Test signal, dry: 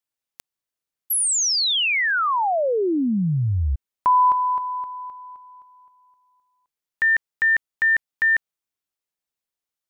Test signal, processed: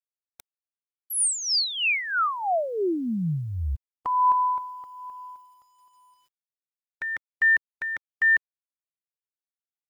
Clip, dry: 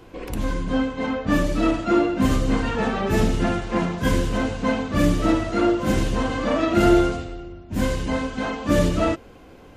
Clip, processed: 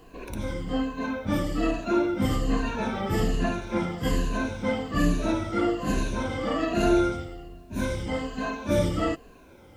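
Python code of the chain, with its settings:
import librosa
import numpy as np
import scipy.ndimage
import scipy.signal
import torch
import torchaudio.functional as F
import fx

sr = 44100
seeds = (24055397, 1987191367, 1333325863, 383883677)

y = fx.spec_ripple(x, sr, per_octave=1.5, drift_hz=-1.2, depth_db=12)
y = fx.quant_dither(y, sr, seeds[0], bits=10, dither='none')
y = F.gain(torch.from_numpy(y), -6.5).numpy()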